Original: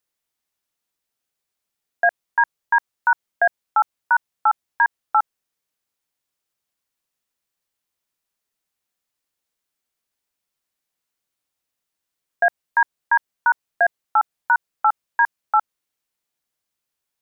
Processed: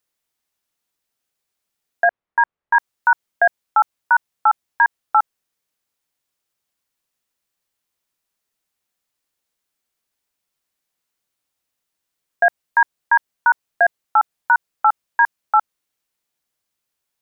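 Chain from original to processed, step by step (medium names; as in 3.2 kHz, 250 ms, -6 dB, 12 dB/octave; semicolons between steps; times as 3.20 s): 2.04–2.75 s: low-pass 1.8 kHz 12 dB/octave; trim +2.5 dB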